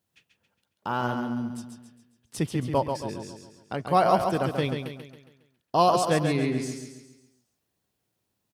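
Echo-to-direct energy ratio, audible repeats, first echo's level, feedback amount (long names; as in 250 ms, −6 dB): −5.0 dB, 5, −6.0 dB, 46%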